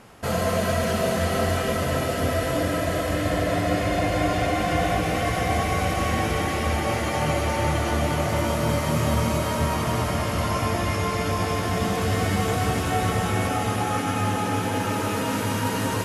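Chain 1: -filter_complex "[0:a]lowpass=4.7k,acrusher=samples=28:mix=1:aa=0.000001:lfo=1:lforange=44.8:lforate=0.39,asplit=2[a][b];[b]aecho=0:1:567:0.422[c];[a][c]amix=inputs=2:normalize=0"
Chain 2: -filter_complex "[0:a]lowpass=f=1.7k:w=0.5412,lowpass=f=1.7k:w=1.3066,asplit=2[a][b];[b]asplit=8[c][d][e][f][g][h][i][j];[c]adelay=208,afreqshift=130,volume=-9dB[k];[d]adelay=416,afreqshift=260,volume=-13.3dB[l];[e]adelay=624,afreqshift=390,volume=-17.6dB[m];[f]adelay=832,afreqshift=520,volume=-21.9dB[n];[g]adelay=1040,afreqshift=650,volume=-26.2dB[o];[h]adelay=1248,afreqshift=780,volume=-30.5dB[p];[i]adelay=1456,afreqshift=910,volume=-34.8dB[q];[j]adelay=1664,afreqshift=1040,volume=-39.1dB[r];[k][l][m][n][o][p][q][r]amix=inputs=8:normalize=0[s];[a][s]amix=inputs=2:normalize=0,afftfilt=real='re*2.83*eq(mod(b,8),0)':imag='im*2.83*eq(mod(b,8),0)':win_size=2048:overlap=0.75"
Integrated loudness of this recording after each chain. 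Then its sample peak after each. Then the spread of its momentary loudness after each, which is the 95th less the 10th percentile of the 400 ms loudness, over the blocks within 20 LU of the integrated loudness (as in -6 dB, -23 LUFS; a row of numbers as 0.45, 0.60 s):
-23.5, -27.0 LUFS; -9.0, -12.0 dBFS; 2, 4 LU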